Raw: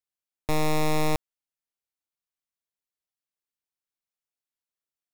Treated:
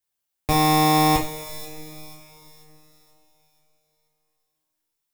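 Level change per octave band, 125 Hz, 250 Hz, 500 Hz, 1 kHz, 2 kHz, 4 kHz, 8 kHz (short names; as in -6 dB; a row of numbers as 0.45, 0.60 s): +7.0, +8.5, +2.5, +12.5, +6.5, +11.0, +9.5 dB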